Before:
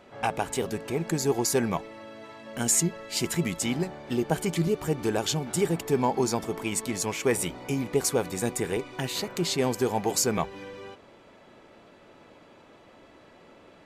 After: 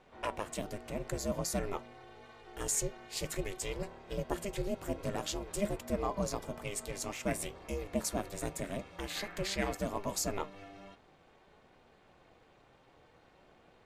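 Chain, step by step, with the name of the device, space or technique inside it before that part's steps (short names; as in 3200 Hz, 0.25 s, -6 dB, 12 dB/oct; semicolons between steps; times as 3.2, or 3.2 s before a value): 9.1–9.77 bell 1800 Hz +12 dB 0.77 oct; alien voice (ring modulator 200 Hz; flange 0.51 Hz, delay 3.9 ms, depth 3.9 ms, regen +86%); gain -2 dB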